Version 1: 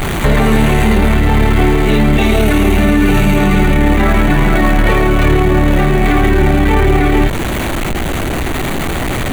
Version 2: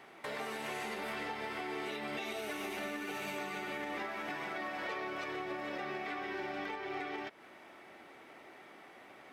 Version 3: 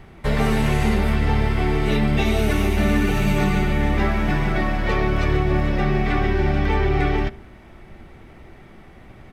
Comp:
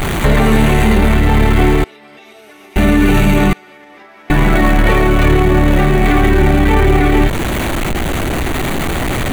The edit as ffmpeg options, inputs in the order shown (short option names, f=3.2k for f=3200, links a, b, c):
-filter_complex "[1:a]asplit=2[a][b];[0:a]asplit=3[c][d][e];[c]atrim=end=1.842[f];[a]atrim=start=1.838:end=2.762[g];[d]atrim=start=2.758:end=3.532[h];[b]atrim=start=3.528:end=4.302[i];[e]atrim=start=4.298[j];[f][g]acrossfade=d=0.004:c1=hsin:c2=hsin[k];[k][h]acrossfade=d=0.004:c1=hsin:c2=hsin[l];[l][i]acrossfade=d=0.004:c1=hsin:c2=hsin[m];[m][j]acrossfade=d=0.004:c1=hsin:c2=hsin"